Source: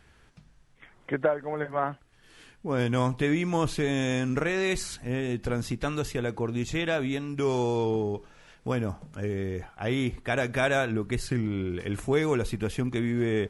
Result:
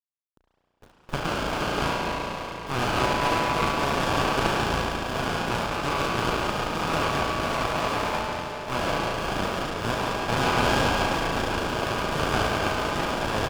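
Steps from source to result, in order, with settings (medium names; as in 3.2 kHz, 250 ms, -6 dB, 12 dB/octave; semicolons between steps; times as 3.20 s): spectral levelling over time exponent 0.2; gate -17 dBFS, range -28 dB; high-pass 1.1 kHz 24 dB/octave; tilt EQ -2 dB/octave; bit crusher 8-bit; frequency shift -13 Hz; speakerphone echo 210 ms, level -10 dB; spring tank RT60 3.8 s, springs 33 ms, chirp 55 ms, DRR -7 dB; sliding maximum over 17 samples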